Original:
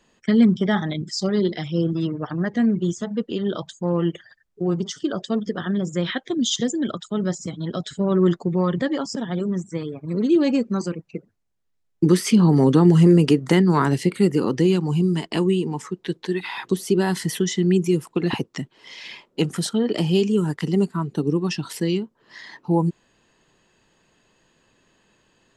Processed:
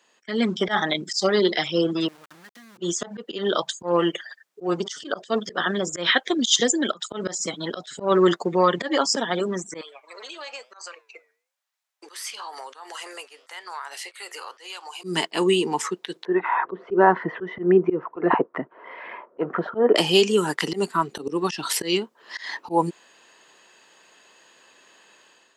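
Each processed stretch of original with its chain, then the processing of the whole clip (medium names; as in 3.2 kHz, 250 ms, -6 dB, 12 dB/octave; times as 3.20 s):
2.08–2.78 s: amplifier tone stack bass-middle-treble 6-0-2 + compression 8:1, threshold -44 dBFS + small samples zeroed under -52 dBFS
9.81–15.04 s: high-pass 690 Hz 24 dB/octave + compression 4:1, threshold -38 dBFS + flange 1 Hz, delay 6.6 ms, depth 4.7 ms, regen +88%
16.25–19.96 s: low-pass 1.5 kHz 24 dB/octave + peaking EQ 690 Hz +7 dB 2.1 oct + band-stop 820 Hz, Q 7.3
whole clip: Bessel high-pass 650 Hz, order 2; slow attack 122 ms; level rider gain up to 8.5 dB; trim +2 dB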